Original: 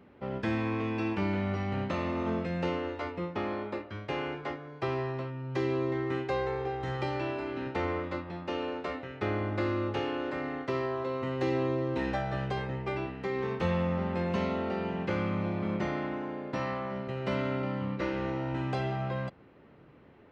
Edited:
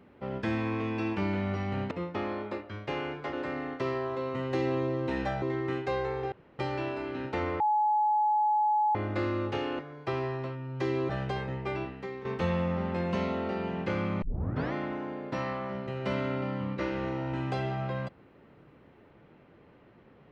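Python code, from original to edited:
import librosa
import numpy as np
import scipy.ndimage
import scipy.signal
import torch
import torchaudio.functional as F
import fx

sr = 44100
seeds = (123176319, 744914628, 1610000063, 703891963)

y = fx.edit(x, sr, fx.cut(start_s=1.91, length_s=1.21),
    fx.swap(start_s=4.54, length_s=1.3, other_s=10.21, other_length_s=2.09),
    fx.room_tone_fill(start_s=6.74, length_s=0.27),
    fx.bleep(start_s=8.02, length_s=1.35, hz=848.0, db=-22.5),
    fx.fade_out_to(start_s=13.03, length_s=0.43, floor_db=-12.0),
    fx.tape_start(start_s=15.43, length_s=0.51), tone=tone)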